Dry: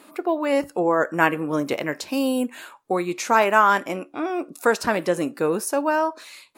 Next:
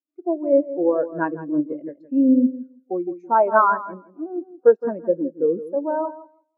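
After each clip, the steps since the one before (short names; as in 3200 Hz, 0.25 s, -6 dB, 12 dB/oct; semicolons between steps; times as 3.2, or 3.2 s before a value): tilt -1.5 dB/oct; darkening echo 0.165 s, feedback 44%, low-pass 4000 Hz, level -6 dB; spectral expander 2.5:1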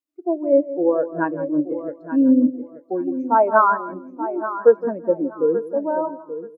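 feedback echo 0.88 s, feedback 20%, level -12 dB; gain +1 dB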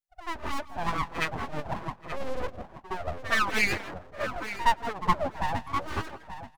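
full-wave rectifier; harmonic-percussive split harmonic -17 dB; pre-echo 66 ms -14.5 dB; gain +1.5 dB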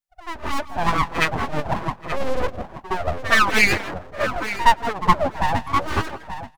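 AGC gain up to 8 dB; gain +1.5 dB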